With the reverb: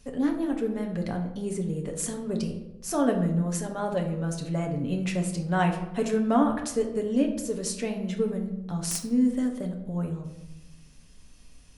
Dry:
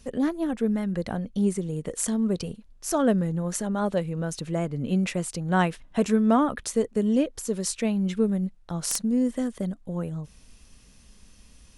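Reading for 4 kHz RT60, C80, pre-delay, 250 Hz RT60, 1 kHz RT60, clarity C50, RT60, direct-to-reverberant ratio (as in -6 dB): 0.55 s, 11.0 dB, 7 ms, 1.3 s, 0.85 s, 8.0 dB, 0.90 s, 1.5 dB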